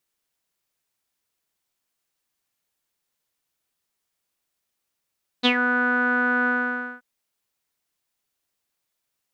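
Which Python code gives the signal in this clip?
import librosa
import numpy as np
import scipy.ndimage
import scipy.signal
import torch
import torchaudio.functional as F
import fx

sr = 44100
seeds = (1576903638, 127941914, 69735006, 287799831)

y = fx.sub_voice(sr, note=59, wave='saw', cutoff_hz=1500.0, q=11.0, env_oct=1.5, env_s=0.15, attack_ms=26.0, decay_s=0.08, sustain_db=-8.0, release_s=0.54, note_s=1.04, slope=12)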